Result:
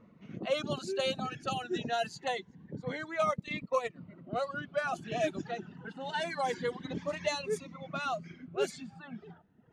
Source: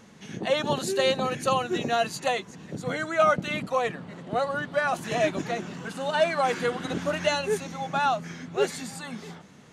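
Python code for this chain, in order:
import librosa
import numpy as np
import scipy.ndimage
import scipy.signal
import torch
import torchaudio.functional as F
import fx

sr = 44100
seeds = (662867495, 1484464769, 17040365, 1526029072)

y = fx.transient(x, sr, attack_db=4, sustain_db=-9, at=(3.24, 3.96))
y = fx.env_lowpass(y, sr, base_hz=1400.0, full_db=-19.0)
y = fx.dereverb_blind(y, sr, rt60_s=1.1)
y = fx.notch_cascade(y, sr, direction='rising', hz=0.26)
y = y * librosa.db_to_amplitude(-5.0)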